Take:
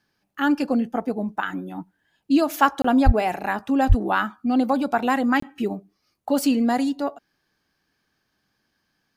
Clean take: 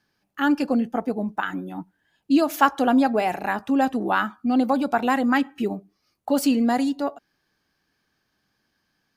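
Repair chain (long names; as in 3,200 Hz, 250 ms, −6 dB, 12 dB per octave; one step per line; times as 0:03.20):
0:03.05–0:03.17: high-pass filter 140 Hz 24 dB per octave
0:03.88–0:04.00: high-pass filter 140 Hz 24 dB per octave
repair the gap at 0:02.82/0:05.40, 24 ms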